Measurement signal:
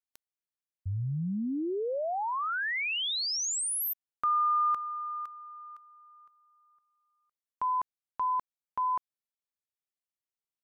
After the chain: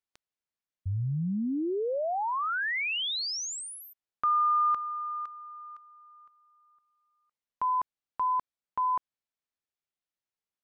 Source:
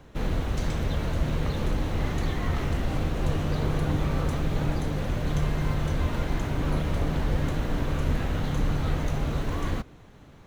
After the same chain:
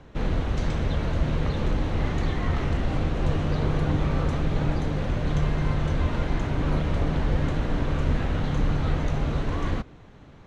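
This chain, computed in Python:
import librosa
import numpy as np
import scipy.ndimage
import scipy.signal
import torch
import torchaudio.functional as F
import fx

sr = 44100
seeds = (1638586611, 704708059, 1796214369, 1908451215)

y = fx.air_absorb(x, sr, metres=79.0)
y = y * librosa.db_to_amplitude(2.0)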